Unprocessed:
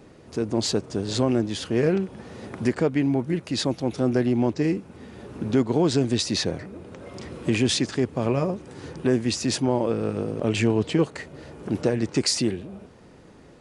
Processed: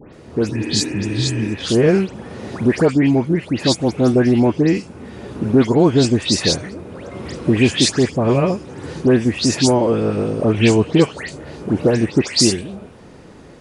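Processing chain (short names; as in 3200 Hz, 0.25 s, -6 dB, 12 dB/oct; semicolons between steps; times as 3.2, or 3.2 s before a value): spectral repair 0.52–1.49, 220–2900 Hz after; dispersion highs, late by 0.142 s, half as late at 2700 Hz; gain +8 dB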